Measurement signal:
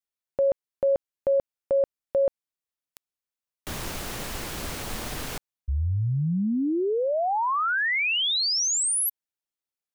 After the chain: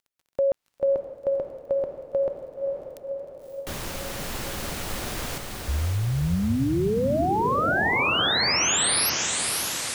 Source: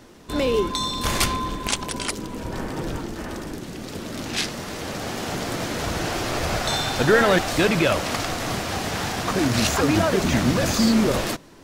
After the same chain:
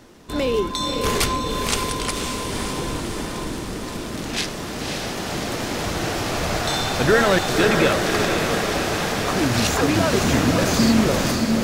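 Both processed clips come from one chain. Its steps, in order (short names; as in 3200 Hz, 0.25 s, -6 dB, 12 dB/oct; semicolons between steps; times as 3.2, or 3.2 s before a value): crackle 28/s -48 dBFS; diffused feedback echo 0.555 s, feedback 64%, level -4 dB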